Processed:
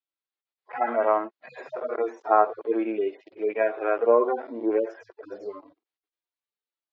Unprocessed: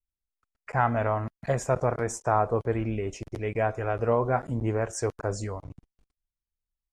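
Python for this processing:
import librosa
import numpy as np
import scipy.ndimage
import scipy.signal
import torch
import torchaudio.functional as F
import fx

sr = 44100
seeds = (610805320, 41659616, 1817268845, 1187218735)

y = fx.hpss_only(x, sr, part='harmonic')
y = scipy.signal.sosfilt(scipy.signal.ellip(3, 1.0, 40, [320.0, 4200.0], 'bandpass', fs=sr, output='sos'), y)
y = y * 10.0 ** (7.5 / 20.0)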